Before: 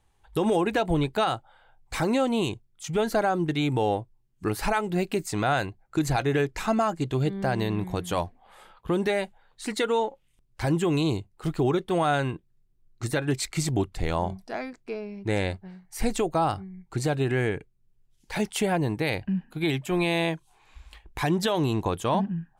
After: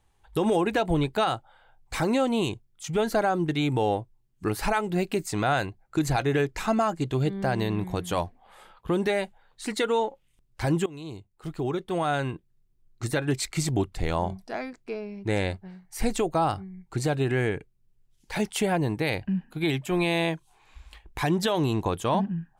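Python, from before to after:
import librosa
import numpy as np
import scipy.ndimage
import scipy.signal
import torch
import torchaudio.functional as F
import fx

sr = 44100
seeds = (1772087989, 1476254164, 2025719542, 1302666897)

y = fx.edit(x, sr, fx.fade_in_from(start_s=10.86, length_s=2.37, curve='qsin', floor_db=-21.0), tone=tone)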